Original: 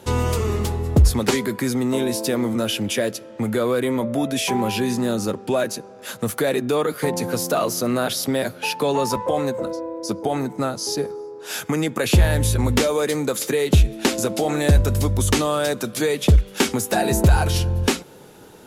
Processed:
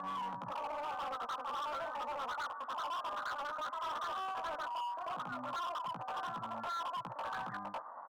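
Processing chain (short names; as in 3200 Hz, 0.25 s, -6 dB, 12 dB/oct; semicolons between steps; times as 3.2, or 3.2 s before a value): fixed phaser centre 410 Hz, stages 4; doubler 39 ms -4 dB; reverse echo 0.21 s -8 dB; reverse; compressor 5:1, threshold -28 dBFS, peak gain reduction 16.5 dB; reverse; steep low-pass 680 Hz 36 dB/oct; dynamic EQ 280 Hz, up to -6 dB, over -45 dBFS, Q 1.2; HPF 220 Hz 12 dB/oct; wide varispeed 2.31×; hard clip -35.5 dBFS, distortion -9 dB; gain -1 dB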